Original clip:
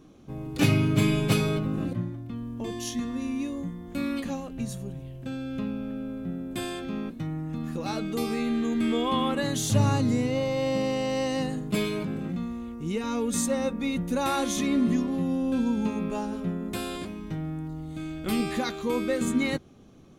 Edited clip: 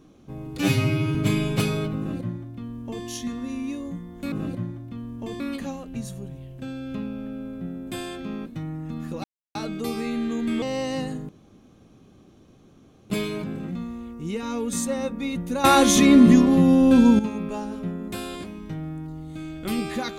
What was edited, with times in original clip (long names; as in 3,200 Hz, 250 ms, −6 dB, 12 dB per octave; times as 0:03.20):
0:00.59–0:00.87: time-stretch 2×
0:01.70–0:02.78: duplicate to 0:04.04
0:07.88: splice in silence 0.31 s
0:08.95–0:11.04: remove
0:11.71: splice in room tone 1.81 s
0:14.25–0:15.80: clip gain +11 dB